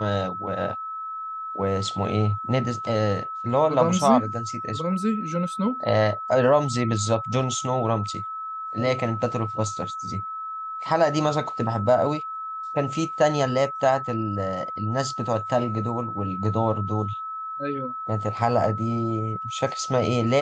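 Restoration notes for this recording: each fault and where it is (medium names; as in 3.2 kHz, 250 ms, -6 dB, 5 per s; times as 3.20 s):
whine 1.3 kHz -30 dBFS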